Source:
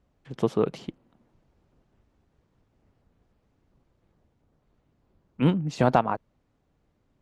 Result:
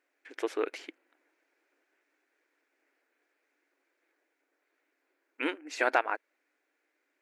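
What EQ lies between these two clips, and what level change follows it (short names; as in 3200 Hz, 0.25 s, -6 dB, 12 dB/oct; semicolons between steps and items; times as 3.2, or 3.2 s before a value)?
brick-wall FIR high-pass 270 Hz; band shelf 1900 Hz +12.5 dB 1 oct; high shelf 3600 Hz +9 dB; -7.0 dB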